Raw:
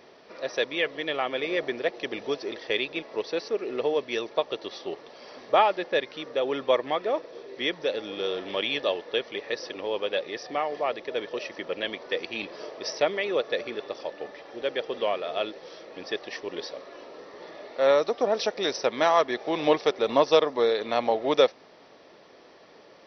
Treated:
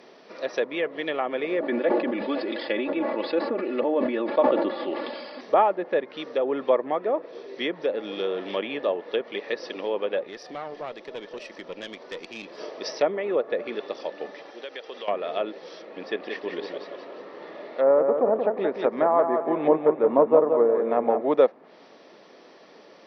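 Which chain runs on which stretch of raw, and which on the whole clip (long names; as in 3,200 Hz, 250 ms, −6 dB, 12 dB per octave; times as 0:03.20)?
0:01.60–0:05.41: linear-phase brick-wall low-pass 5,300 Hz + comb filter 3.5 ms, depth 80% + level that may fall only so fast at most 32 dB per second
0:10.23–0:12.58: downward compressor 1.5 to 1, threshold −38 dBFS + tube saturation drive 27 dB, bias 0.65
0:14.50–0:15.08: high-pass filter 770 Hz 6 dB per octave + downward compressor 4 to 1, threshold −35 dBFS
0:15.82–0:21.21: low-pass filter 3,100 Hz + treble cut that deepens with the level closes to 1,200 Hz, closed at −19 dBFS + repeating echo 177 ms, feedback 42%, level −6 dB
whole clip: treble cut that deepens with the level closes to 1,300 Hz, closed at −23 dBFS; low shelf with overshoot 140 Hz −10 dB, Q 1.5; level +1.5 dB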